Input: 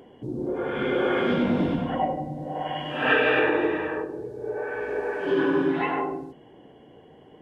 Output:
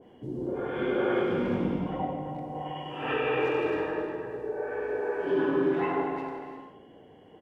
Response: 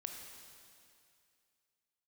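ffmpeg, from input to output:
-filter_complex "[0:a]asettb=1/sr,asplit=3[a][b][c];[a]atrim=end=1.224[d];[b]atrim=start=1.22:end=3.66,asetpts=PTS-STARTPTS,afade=t=in:d=0.004:c=qsin,afade=t=out:st=2.436:d=0.004:c=qsin,equalizer=f=250:t=o:w=0.33:g=-7,equalizer=f=630:t=o:w=0.33:g=-9,equalizer=f=1.6k:t=o:w=0.33:g=-11,equalizer=f=4k:t=o:w=0.33:g=-10[e];[c]atrim=start=3.656[f];[d][e]acrossfade=d=0.004:c1=hsin:c2=qsin[g];[g][f]acrossfade=d=0.004:c1=qsin:c2=hsin,asplit=2[h][i];[i]adelay=350,highpass=300,lowpass=3.4k,asoftclip=type=hard:threshold=-21.5dB,volume=-8dB[j];[h][j]amix=inputs=2:normalize=0[k];[1:a]atrim=start_sample=2205,afade=t=out:st=0.41:d=0.01,atrim=end_sample=18522[l];[k][l]afir=irnorm=-1:irlink=0,adynamicequalizer=threshold=0.00631:dfrequency=1600:dqfactor=0.7:tfrequency=1600:tqfactor=0.7:attack=5:release=100:ratio=0.375:range=3:mode=cutabove:tftype=highshelf"

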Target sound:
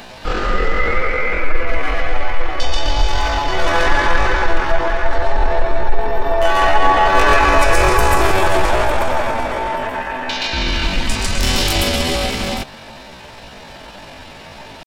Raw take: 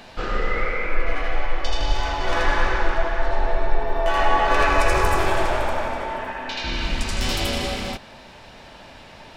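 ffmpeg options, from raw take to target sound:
-af "crystalizer=i=0.5:c=0,atempo=0.63,acontrast=65,volume=1dB"

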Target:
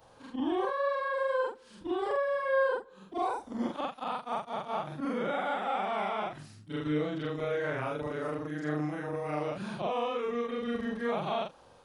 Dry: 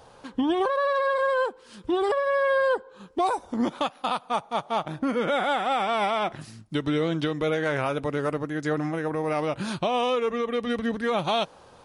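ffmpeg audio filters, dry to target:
-filter_complex "[0:a]afftfilt=real='re':imag='-im':win_size=4096:overlap=0.75,acrossover=split=2800[a][b];[b]acompressor=threshold=-51dB:ratio=4:attack=1:release=60[c];[a][c]amix=inputs=2:normalize=0,volume=-2.5dB"

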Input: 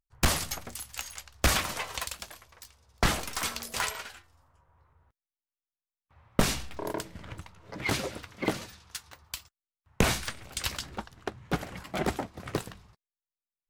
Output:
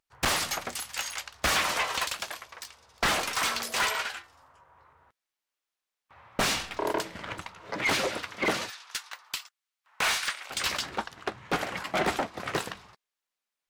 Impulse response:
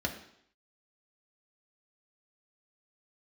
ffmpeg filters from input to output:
-filter_complex "[0:a]asettb=1/sr,asplit=3[a][b][c];[a]atrim=end=8.704[d];[b]atrim=start=8.7:end=10.5,asetpts=PTS-STARTPTS,afade=t=in:d=0.004:c=qsin,afade=t=out:st=1.796:d=0.004:c=qsin,highpass=940[e];[c]atrim=start=10.496[f];[d][e]acrossfade=d=0.004:c1=hsin:c2=qsin[g];[g][f]acrossfade=d=0.004:c1=qsin:c2=hsin,asplit=2[h][i];[i]highpass=f=720:p=1,volume=26dB,asoftclip=type=tanh:threshold=-8dB[j];[h][j]amix=inputs=2:normalize=0,lowpass=f=3.9k:p=1,volume=-6dB,volume=-7.5dB"

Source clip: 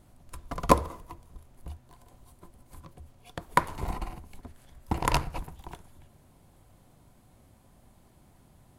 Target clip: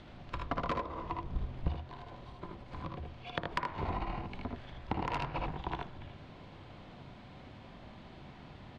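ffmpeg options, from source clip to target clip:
-filter_complex "[0:a]lowshelf=f=68:g=-9.5,acrossover=split=530|1700[a][b][c];[c]acompressor=mode=upward:threshold=-58dB:ratio=2.5[d];[a][b][d]amix=inputs=3:normalize=0,lowpass=f=3.8k:w=0.5412,lowpass=f=3.8k:w=1.3066,aecho=1:1:57|78:0.398|0.631,asoftclip=type=tanh:threshold=-15.5dB,alimiter=limit=-22dB:level=0:latency=1:release=276,acompressor=threshold=-39dB:ratio=16,asettb=1/sr,asplit=3[e][f][g];[e]atrim=end=1.244[h];[f]atrim=start=1.24:end=1.68,asetpts=PTS-STARTPTS,afade=t=in:d=0.004:c=qsin,afade=t=out:st=0.436:d=0.004:c=qsin,lowshelf=f=250:g=9.5[i];[g]atrim=start=1.676[j];[h][i]acrossfade=d=0.004:c1=hsin:c2=qsin[k];[k][j]acrossfade=d=0.004:c1=qsin:c2=hsin,volume=8dB"

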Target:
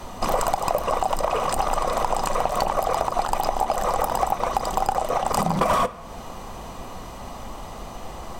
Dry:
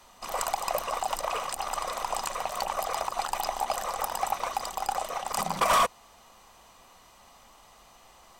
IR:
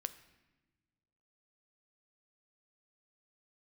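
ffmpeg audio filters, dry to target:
-filter_complex "[0:a]tiltshelf=f=770:g=8,acompressor=threshold=-38dB:ratio=6,asplit=2[a][b];[1:a]atrim=start_sample=2205[c];[b][c]afir=irnorm=-1:irlink=0,volume=11.5dB[d];[a][d]amix=inputs=2:normalize=0,volume=6.5dB"

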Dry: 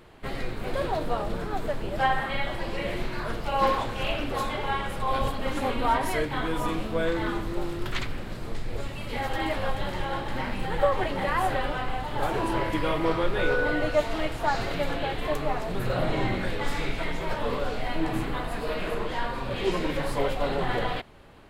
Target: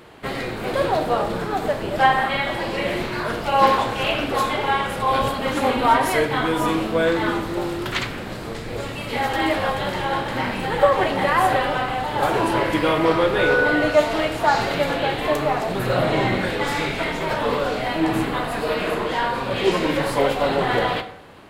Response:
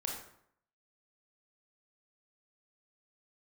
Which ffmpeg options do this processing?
-filter_complex "[0:a]highpass=f=150:p=1,asplit=2[a][b];[1:a]atrim=start_sample=2205[c];[b][c]afir=irnorm=-1:irlink=0,volume=-6dB[d];[a][d]amix=inputs=2:normalize=0,volume=5dB"

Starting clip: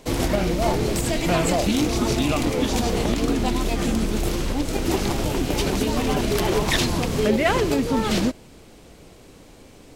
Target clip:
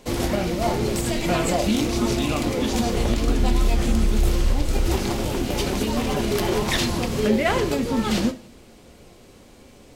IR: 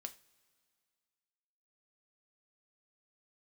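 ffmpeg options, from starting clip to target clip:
-filter_complex "[0:a]asplit=3[a][b][c];[a]afade=t=out:st=2.95:d=0.02[d];[b]asubboost=boost=3.5:cutoff=100,afade=t=in:st=2.95:d=0.02,afade=t=out:st=4.96:d=0.02[e];[c]afade=t=in:st=4.96:d=0.02[f];[d][e][f]amix=inputs=3:normalize=0[g];[1:a]atrim=start_sample=2205,afade=t=out:st=0.39:d=0.01,atrim=end_sample=17640[h];[g][h]afir=irnorm=-1:irlink=0,volume=3dB"

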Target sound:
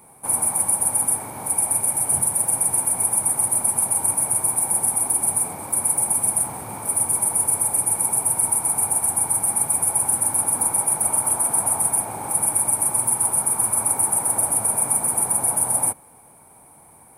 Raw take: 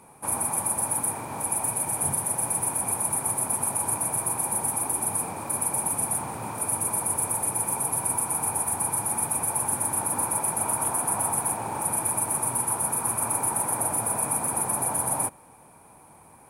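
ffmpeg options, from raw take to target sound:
-af "asetrate=42336,aresample=44100,aexciter=amount=3.1:drive=5.1:freq=9.5k"

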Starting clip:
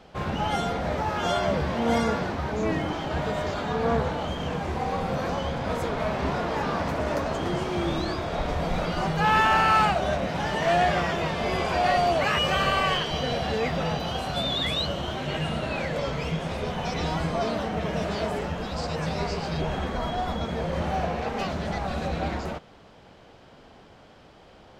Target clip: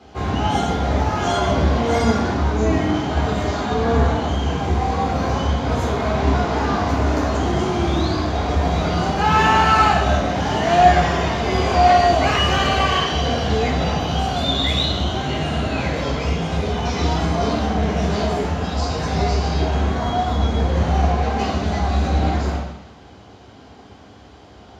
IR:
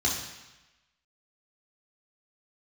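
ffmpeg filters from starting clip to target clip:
-filter_complex "[1:a]atrim=start_sample=2205[a];[0:a][a]afir=irnorm=-1:irlink=0,volume=-4.5dB"

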